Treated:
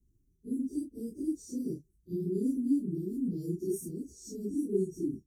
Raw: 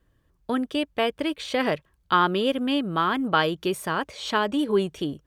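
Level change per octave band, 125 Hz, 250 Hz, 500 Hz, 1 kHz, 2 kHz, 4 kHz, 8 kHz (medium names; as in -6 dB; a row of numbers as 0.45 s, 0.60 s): -4.5 dB, -5.0 dB, -10.5 dB, under -40 dB, under -40 dB, under -30 dB, -4.5 dB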